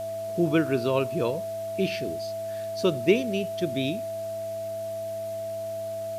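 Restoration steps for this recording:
hum removal 104.6 Hz, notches 4
notch filter 660 Hz, Q 30
noise reduction from a noise print 30 dB

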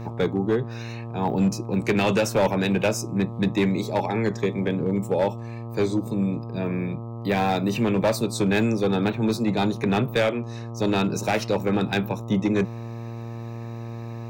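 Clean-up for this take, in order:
clipped peaks rebuilt −15.5 dBFS
hum removal 116.1 Hz, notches 11

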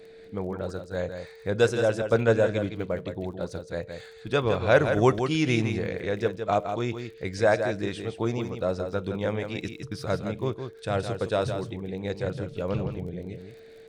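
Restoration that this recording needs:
click removal
notch filter 450 Hz, Q 30
echo removal 164 ms −7.5 dB

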